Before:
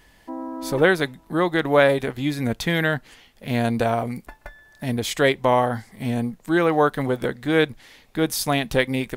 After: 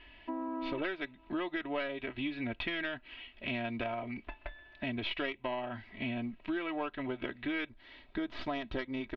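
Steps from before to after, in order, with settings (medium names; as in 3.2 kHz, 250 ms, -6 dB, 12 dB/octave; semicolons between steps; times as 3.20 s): tracing distortion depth 0.16 ms; steep low-pass 3.8 kHz 36 dB/octave; comb 3.1 ms, depth 77%; peaking EQ 2.6 kHz +12.5 dB 0.58 oct, from 7.69 s 11 kHz; compression 6:1, threshold -28 dBFS, peak gain reduction 19 dB; trim -6 dB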